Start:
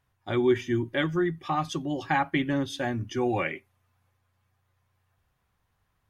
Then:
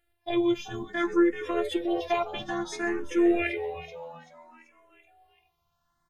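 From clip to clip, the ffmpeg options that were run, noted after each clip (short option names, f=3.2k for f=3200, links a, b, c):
-filter_complex "[0:a]afftfilt=real='hypot(re,im)*cos(PI*b)':imag='0':win_size=512:overlap=0.75,asplit=6[a][b][c][d][e][f];[b]adelay=384,afreqshift=80,volume=-12dB[g];[c]adelay=768,afreqshift=160,volume=-18.2dB[h];[d]adelay=1152,afreqshift=240,volume=-24.4dB[i];[e]adelay=1536,afreqshift=320,volume=-30.6dB[j];[f]adelay=1920,afreqshift=400,volume=-36.8dB[k];[a][g][h][i][j][k]amix=inputs=6:normalize=0,asplit=2[l][m];[m]afreqshift=0.59[n];[l][n]amix=inputs=2:normalize=1,volume=7dB"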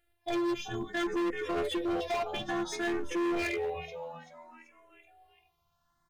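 -af "volume=28dB,asoftclip=hard,volume=-28dB"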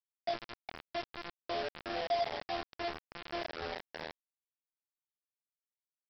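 -af "acompressor=threshold=-34dB:ratio=2,bandpass=f=650:t=q:w=4.3:csg=0,aresample=11025,acrusher=bits=6:mix=0:aa=0.000001,aresample=44100,volume=4.5dB"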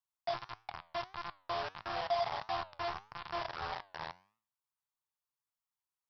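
-af "equalizer=f=125:t=o:w=1:g=8,equalizer=f=250:t=o:w=1:g=-9,equalizer=f=500:t=o:w=1:g=-8,equalizer=f=1k:t=o:w=1:g=12,equalizer=f=2k:t=o:w=1:g=-3,flanger=delay=8.7:depth=3.8:regen=87:speed=1.6:shape=triangular,volume=3.5dB"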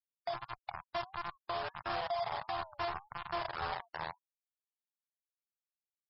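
-af "alimiter=level_in=8dB:limit=-24dB:level=0:latency=1:release=205,volume=-8dB,afftfilt=real='re*gte(hypot(re,im),0.00355)':imag='im*gte(hypot(re,im),0.00355)':win_size=1024:overlap=0.75,volume=4.5dB"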